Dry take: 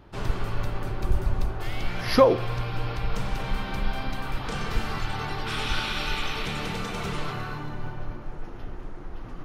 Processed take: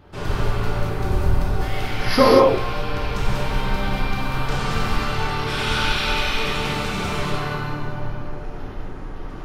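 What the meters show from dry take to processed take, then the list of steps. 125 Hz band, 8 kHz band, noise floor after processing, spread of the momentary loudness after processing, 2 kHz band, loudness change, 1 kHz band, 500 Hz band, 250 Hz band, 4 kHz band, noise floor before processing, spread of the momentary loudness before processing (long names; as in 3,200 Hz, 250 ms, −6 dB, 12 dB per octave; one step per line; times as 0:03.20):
+6.5 dB, +7.0 dB, −32 dBFS, 15 LU, +7.5 dB, +6.5 dB, +7.5 dB, +6.0 dB, +7.0 dB, +7.0 dB, −38 dBFS, 14 LU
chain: reverb whose tail is shaped and stops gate 260 ms flat, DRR −5 dB
level +1 dB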